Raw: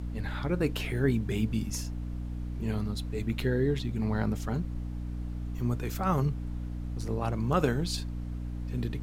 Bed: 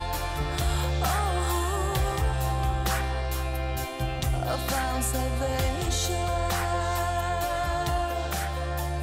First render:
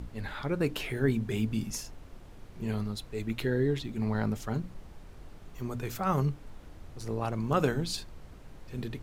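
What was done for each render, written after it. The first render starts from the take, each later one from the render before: notches 60/120/180/240/300 Hz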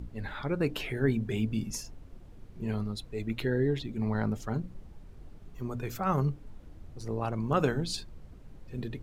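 denoiser 8 dB, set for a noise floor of -49 dBFS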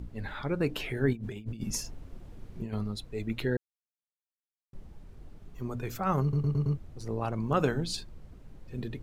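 1.13–2.73 negative-ratio compressor -35 dBFS, ratio -0.5; 3.57–4.73 mute; 6.22 stutter in place 0.11 s, 5 plays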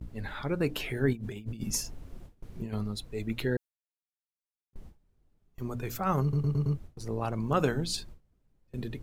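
gate with hold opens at -36 dBFS; high shelf 7300 Hz +6.5 dB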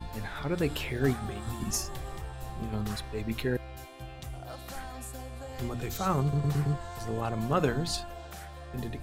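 add bed -14 dB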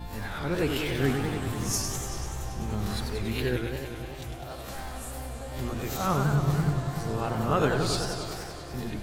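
spectral swells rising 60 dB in 0.35 s; warbling echo 96 ms, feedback 78%, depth 217 cents, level -6 dB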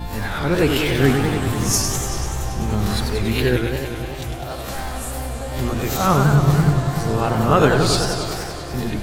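gain +10 dB

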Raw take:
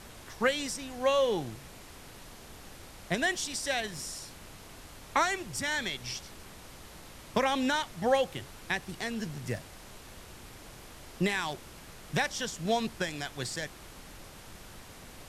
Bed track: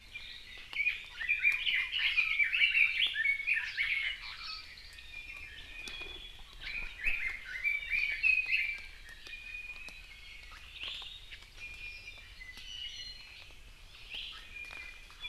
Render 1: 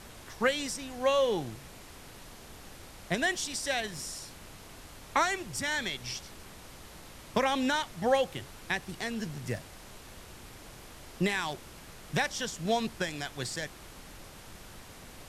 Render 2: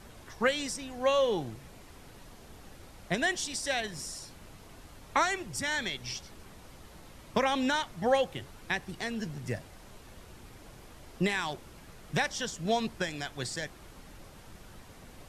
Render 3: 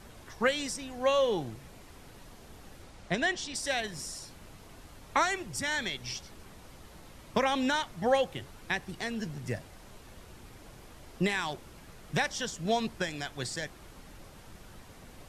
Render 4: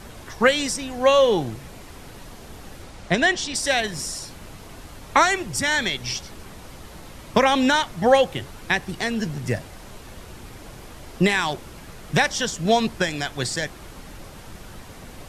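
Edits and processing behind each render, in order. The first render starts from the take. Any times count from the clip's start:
nothing audible
denoiser 6 dB, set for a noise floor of -50 dBFS
2.83–3.54 LPF 11000 Hz -> 4500 Hz
gain +10 dB

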